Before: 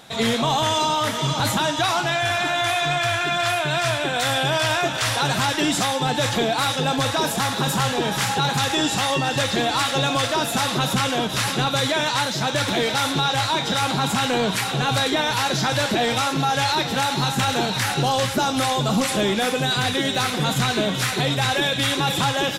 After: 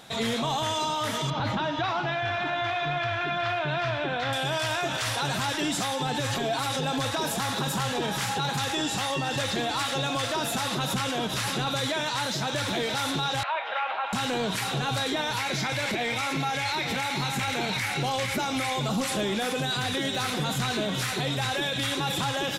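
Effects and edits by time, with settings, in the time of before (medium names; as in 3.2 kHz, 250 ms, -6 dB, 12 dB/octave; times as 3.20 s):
1.30–4.33 s: distance through air 250 m
6.18–6.81 s: comb 7.4 ms, depth 97%
13.43–14.13 s: Chebyshev band-pass 590–2700 Hz, order 3
15.39–18.88 s: peaking EQ 2.2 kHz +13.5 dB 0.28 oct
whole clip: peak limiter -17.5 dBFS; trim -2.5 dB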